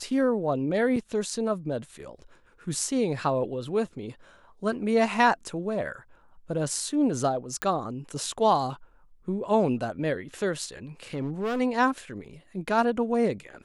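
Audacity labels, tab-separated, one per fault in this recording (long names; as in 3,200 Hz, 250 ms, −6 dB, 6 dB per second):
0.960000	0.960000	drop-out 4.2 ms
7.620000	7.620000	click −13 dBFS
11.140000	11.610000	clipping −25 dBFS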